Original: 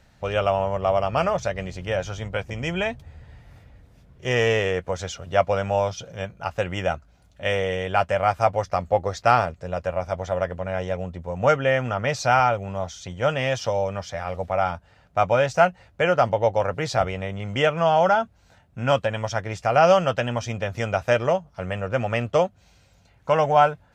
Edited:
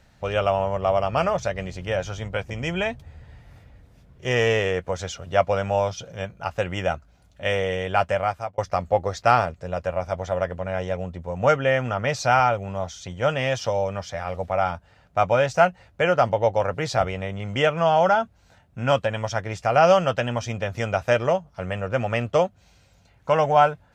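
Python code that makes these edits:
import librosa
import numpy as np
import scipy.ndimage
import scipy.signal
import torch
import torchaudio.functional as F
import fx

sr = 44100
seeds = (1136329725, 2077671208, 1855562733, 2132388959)

y = fx.edit(x, sr, fx.fade_out_span(start_s=8.12, length_s=0.46), tone=tone)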